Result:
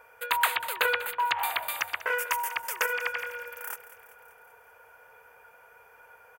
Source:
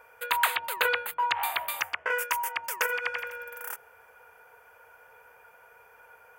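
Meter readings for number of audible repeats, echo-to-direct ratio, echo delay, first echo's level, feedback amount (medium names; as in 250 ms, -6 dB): 5, -13.5 dB, 193 ms, -15.5 dB, 59%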